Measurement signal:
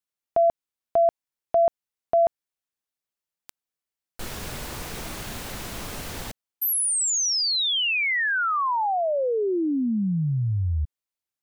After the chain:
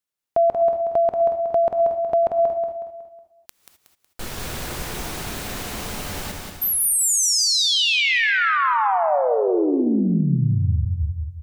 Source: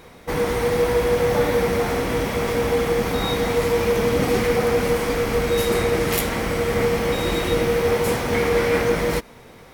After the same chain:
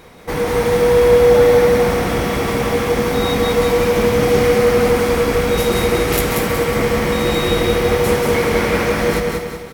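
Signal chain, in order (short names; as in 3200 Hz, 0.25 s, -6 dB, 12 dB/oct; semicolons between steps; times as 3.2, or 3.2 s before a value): on a send: feedback echo 0.184 s, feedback 43%, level -4.5 dB; on the sum: non-linear reverb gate 0.28 s rising, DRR 8 dB; gain +2.5 dB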